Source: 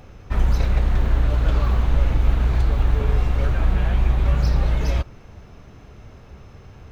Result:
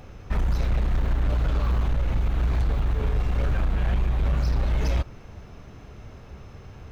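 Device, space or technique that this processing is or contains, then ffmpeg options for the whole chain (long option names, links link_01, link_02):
limiter into clipper: -af "alimiter=limit=-13dB:level=0:latency=1:release=215,asoftclip=type=hard:threshold=-18dB"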